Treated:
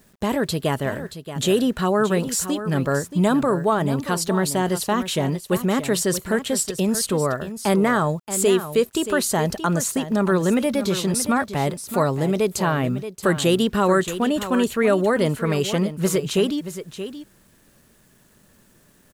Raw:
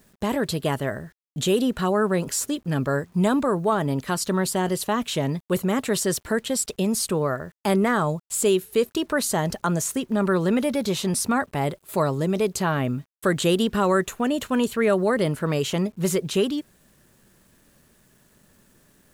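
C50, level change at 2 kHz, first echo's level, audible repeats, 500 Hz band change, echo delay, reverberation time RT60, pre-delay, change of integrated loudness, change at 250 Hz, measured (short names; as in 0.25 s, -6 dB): none, +2.5 dB, -11.5 dB, 1, +2.5 dB, 0.627 s, none, none, +2.5 dB, +2.5 dB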